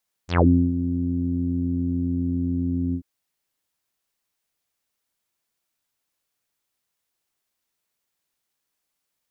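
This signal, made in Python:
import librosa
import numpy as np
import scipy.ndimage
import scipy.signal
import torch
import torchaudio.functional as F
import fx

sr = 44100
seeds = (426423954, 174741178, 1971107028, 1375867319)

y = fx.sub_voice(sr, note=41, wave='saw', cutoff_hz=280.0, q=6.1, env_oct=5.0, env_s=0.17, attack_ms=119.0, decay_s=0.32, sustain_db=-11, release_s=0.08, note_s=2.66, slope=24)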